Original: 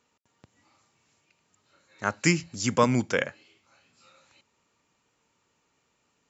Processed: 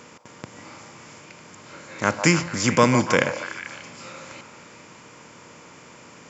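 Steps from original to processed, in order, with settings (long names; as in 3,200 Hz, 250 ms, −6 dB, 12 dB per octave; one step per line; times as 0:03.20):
compressor on every frequency bin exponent 0.6
echo through a band-pass that steps 147 ms, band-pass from 780 Hz, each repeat 0.7 octaves, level −5.5 dB
level +3 dB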